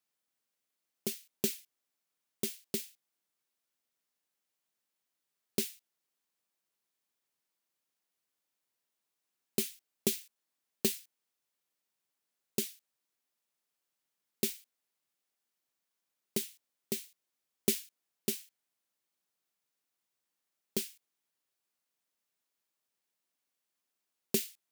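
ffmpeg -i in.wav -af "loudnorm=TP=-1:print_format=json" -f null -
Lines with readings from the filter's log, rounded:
"input_i" : "-36.5",
"input_tp" : "-11.4",
"input_lra" : "7.3",
"input_thresh" : "-47.2",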